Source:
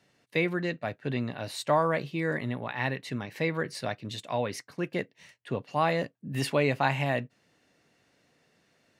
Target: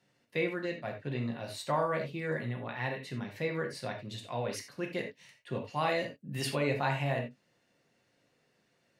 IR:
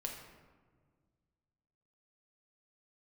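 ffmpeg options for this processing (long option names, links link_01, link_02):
-filter_complex "[1:a]atrim=start_sample=2205,atrim=end_sample=4410[link_01];[0:a][link_01]afir=irnorm=-1:irlink=0,asplit=3[link_02][link_03][link_04];[link_02]afade=type=out:start_time=4.49:duration=0.02[link_05];[link_03]adynamicequalizer=threshold=0.00562:dfrequency=1900:dqfactor=0.7:tfrequency=1900:tqfactor=0.7:attack=5:release=100:ratio=0.375:range=2.5:mode=boostabove:tftype=highshelf,afade=type=in:start_time=4.49:duration=0.02,afade=type=out:start_time=6.54:duration=0.02[link_06];[link_04]afade=type=in:start_time=6.54:duration=0.02[link_07];[link_05][link_06][link_07]amix=inputs=3:normalize=0,volume=-3.5dB"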